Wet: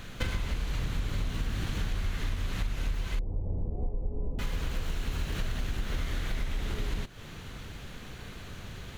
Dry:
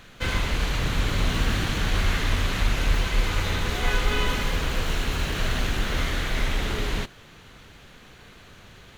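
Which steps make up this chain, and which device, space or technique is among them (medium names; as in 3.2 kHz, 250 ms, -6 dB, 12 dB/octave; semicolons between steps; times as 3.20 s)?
3.19–4.39 s: inverse Chebyshev low-pass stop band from 1.4 kHz, stop band 40 dB; ASMR close-microphone chain (bass shelf 250 Hz +8 dB; compression 8:1, threshold -29 dBFS, peak gain reduction 19.5 dB; treble shelf 6.2 kHz +4 dB); trim +1 dB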